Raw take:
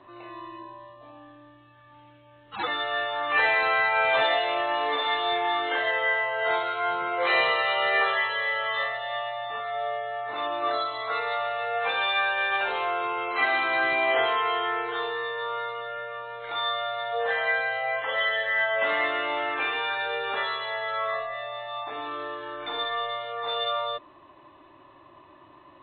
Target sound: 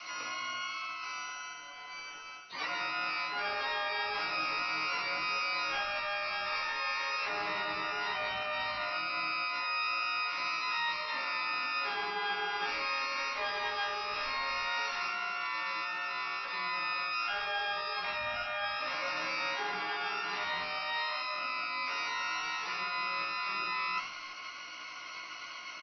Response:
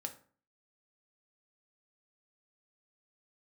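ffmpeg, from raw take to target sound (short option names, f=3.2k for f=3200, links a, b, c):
-filter_complex "[0:a]asplit=5[a][b][c][d][e];[b]adelay=89,afreqshift=-89,volume=-19.5dB[f];[c]adelay=178,afreqshift=-178,volume=-26.1dB[g];[d]adelay=267,afreqshift=-267,volume=-32.6dB[h];[e]adelay=356,afreqshift=-356,volume=-39.2dB[i];[a][f][g][h][i]amix=inputs=5:normalize=0,lowpass=f=2.7k:t=q:w=0.5098,lowpass=f=2.7k:t=q:w=0.6013,lowpass=f=2.7k:t=q:w=0.9,lowpass=f=2.7k:t=q:w=2.563,afreqshift=-3200,asplit=2[j][k];[k]alimiter=limit=-19.5dB:level=0:latency=1:release=98,volume=3dB[l];[j][l]amix=inputs=2:normalize=0,asplit=4[m][n][o][p];[n]asetrate=22050,aresample=44100,atempo=2,volume=-2dB[q];[o]asetrate=66075,aresample=44100,atempo=0.66742,volume=-11dB[r];[p]asetrate=88200,aresample=44100,atempo=0.5,volume=-2dB[s];[m][q][r][s]amix=inputs=4:normalize=0,aemphasis=mode=reproduction:type=50fm,areverse,acompressor=threshold=-33dB:ratio=5,areverse,bandreject=f=60:t=h:w=6,bandreject=f=120:t=h:w=6,asplit=2[t][u];[u]adelay=16,volume=-3dB[v];[t][v]amix=inputs=2:normalize=0,volume=-3dB"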